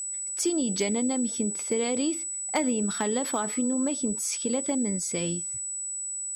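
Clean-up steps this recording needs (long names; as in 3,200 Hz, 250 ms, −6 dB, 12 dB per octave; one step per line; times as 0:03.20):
clipped peaks rebuilt −17.5 dBFS
notch filter 7,900 Hz, Q 30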